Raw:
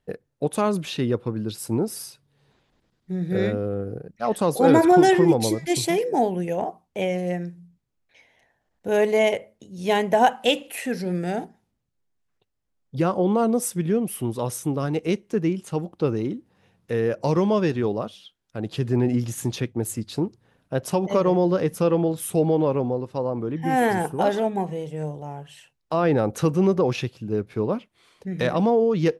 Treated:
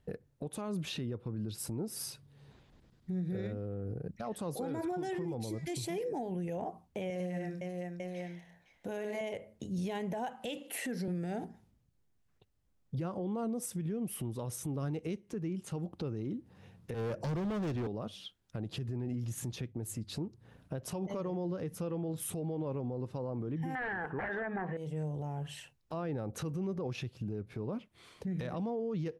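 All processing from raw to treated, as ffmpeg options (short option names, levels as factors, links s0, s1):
-filter_complex "[0:a]asettb=1/sr,asplit=3[s0][s1][s2];[s0]atrim=end=7.104[s3];[s1]atrim=start=7.1:end=9.21,asetpts=PTS-STARTPTS,afade=t=in:d=0.004:c=qsin,afade=t=out:st=2.106:d=0.004:c=qsin,lowshelf=f=210:g=-11,bandreject=f=440:w=12,aecho=1:1:57|72|100|127|511|897:0.316|0.126|0.473|0.15|0.237|0.2,atrim=end_sample=93051[s4];[s2]atrim=start=9.206[s5];[s3][s4]acrossfade=d=0.004:c1=hsin:c2=qsin[s6];[s6][s5]acrossfade=d=0.004:c1=qsin:c2=hsin,asettb=1/sr,asplit=3[s7][s8][s9];[s7]atrim=end=10.574[s10];[s8]atrim=start=10.57:end=11.08,asetpts=PTS-STARTPTS,afade=t=in:d=0.004:c=qsin,afade=t=out:st=0.506:d=0.004:c=qsin,highpass=f=150:w=0.5412,highpass=f=150:w=1.3066,bandreject=f=2500:w=12[s11];[s9]atrim=start=11.076[s12];[s10][s11]acrossfade=d=0.004:c1=hsin:c2=qsin[s13];[s13][s12]acrossfade=d=0.004:c1=qsin:c2=hsin,asettb=1/sr,asplit=3[s14][s15][s16];[s14]atrim=end=16.944[s17];[s15]atrim=start=16.94:end=17.87,asetpts=PTS-STARTPTS,afade=t=in:d=0.004:c=qsin,afade=t=out:st=0.926:d=0.004:c=qsin,acrossover=split=330|3000[s18][s19][s20];[s19]acompressor=threshold=0.0316:ratio=1.5:attack=3.2:release=140:knee=2.83:detection=peak[s21];[s18][s21][s20]amix=inputs=3:normalize=0,asoftclip=type=hard:threshold=0.0447[s22];[s16]atrim=start=17.866[s23];[s17][s22]acrossfade=d=0.004:c1=hsin:c2=qsin[s24];[s24][s23]acrossfade=d=0.004:c1=qsin:c2=hsin,asettb=1/sr,asplit=3[s25][s26][s27];[s25]atrim=end=23.754[s28];[s26]atrim=start=23.75:end=24.77,asetpts=PTS-STARTPTS,afade=t=in:d=0.004:c=qsin,afade=t=out:st=1.016:d=0.004:c=qsin,lowshelf=f=210:g=-11.5,aeval=exprs='0.299*sin(PI/2*2.82*val(0)/0.299)':c=same,lowpass=f=1700:t=q:w=6.5[s29];[s27]atrim=start=24.766[s30];[s28][s29]acrossfade=d=0.004:c1=hsin:c2=qsin[s31];[s31][s30]acrossfade=d=0.004:c1=qsin:c2=hsin,equalizer=f=69:w=0.34:g=9,acompressor=threshold=0.0316:ratio=10,alimiter=level_in=1.88:limit=0.0631:level=0:latency=1:release=55,volume=0.531"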